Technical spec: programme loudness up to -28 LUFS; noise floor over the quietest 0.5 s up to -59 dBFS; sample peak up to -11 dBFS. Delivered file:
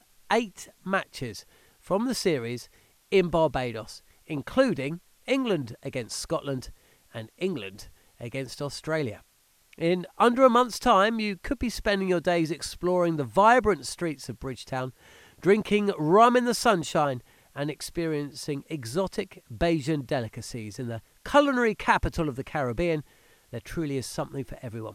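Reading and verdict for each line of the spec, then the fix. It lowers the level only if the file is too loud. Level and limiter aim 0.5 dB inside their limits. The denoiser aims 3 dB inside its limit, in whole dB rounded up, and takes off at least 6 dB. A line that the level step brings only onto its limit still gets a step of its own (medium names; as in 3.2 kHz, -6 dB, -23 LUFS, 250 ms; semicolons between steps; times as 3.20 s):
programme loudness -26.5 LUFS: fail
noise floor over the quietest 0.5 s -64 dBFS: pass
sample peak -5.0 dBFS: fail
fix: trim -2 dB; peak limiter -11.5 dBFS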